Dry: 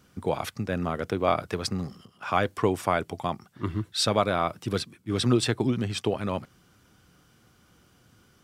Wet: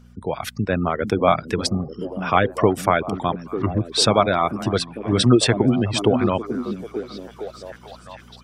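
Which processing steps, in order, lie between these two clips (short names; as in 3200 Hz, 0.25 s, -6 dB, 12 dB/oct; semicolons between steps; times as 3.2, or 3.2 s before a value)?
spectral gate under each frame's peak -30 dB strong; reverb removal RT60 0.6 s; AGC gain up to 9.5 dB; delay with a stepping band-pass 0.447 s, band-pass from 200 Hz, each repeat 0.7 oct, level -5 dB; buzz 60 Hz, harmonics 4, -48 dBFS -3 dB/oct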